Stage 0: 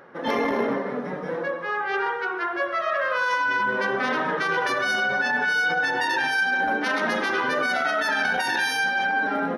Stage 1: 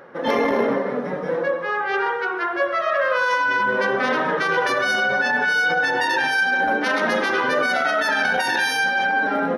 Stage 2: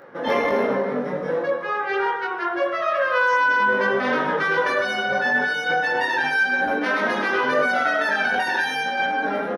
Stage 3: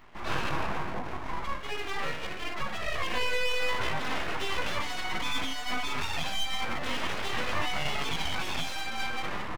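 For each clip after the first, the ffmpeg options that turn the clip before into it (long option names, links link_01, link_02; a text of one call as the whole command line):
ffmpeg -i in.wav -af "equalizer=frequency=530:width=4.3:gain=4.5,volume=3dB" out.wav
ffmpeg -i in.wav -filter_complex "[0:a]acrossover=split=3200[link_01][link_02];[link_02]acompressor=threshold=-37dB:ratio=4:attack=1:release=60[link_03];[link_01][link_03]amix=inputs=2:normalize=0,asplit=2[link_04][link_05];[link_05]adelay=20,volume=-2.5dB[link_06];[link_04][link_06]amix=inputs=2:normalize=0,volume=-2.5dB" out.wav
ffmpeg -i in.wav -af "aeval=exprs='abs(val(0))':channel_layout=same,volume=-7dB" out.wav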